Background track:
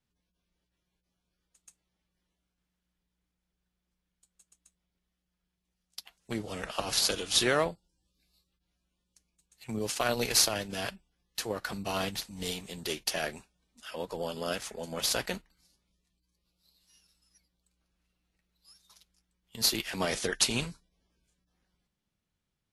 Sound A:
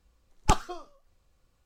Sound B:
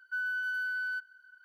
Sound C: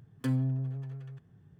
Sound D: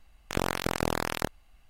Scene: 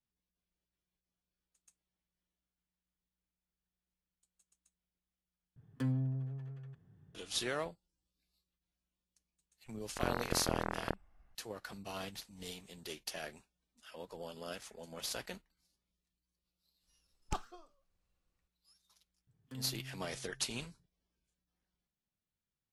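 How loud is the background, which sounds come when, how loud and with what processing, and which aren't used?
background track -11 dB
5.56 s: replace with C -5 dB + treble shelf 5.6 kHz -6 dB
9.66 s: add D -6.5 dB + low-pass 1.9 kHz 24 dB/octave
16.83 s: add A -15.5 dB
19.27 s: add C -17 dB
not used: B

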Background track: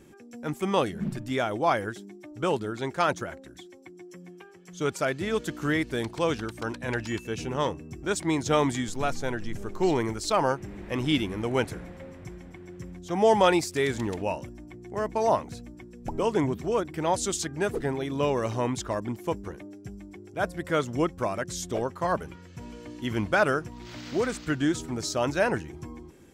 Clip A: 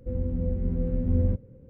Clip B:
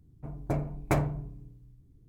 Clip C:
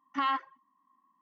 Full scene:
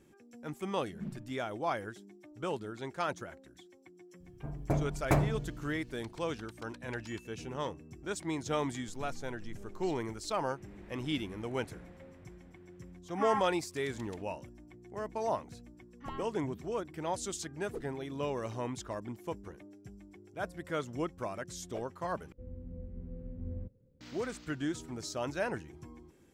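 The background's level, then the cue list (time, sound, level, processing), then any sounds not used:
background track -9.5 dB
4.20 s: add B -0.5 dB
13.03 s: add C -5 dB + elliptic low-pass 2.5 kHz
15.86 s: add C -17.5 dB
22.32 s: replace with A -17 dB

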